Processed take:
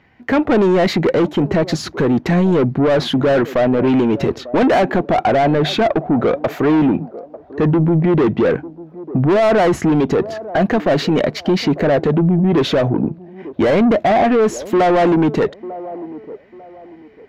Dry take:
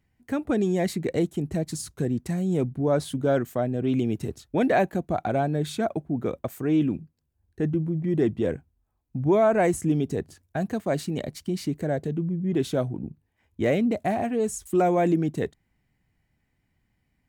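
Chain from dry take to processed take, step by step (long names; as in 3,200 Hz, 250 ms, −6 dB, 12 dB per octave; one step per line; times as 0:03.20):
moving average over 5 samples
mid-hump overdrive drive 25 dB, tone 1,800 Hz, clips at −11.5 dBFS
on a send: delay with a band-pass on its return 896 ms, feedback 30%, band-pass 460 Hz, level −19 dB
on the sum: boost into a limiter +16.5 dB
level −7.5 dB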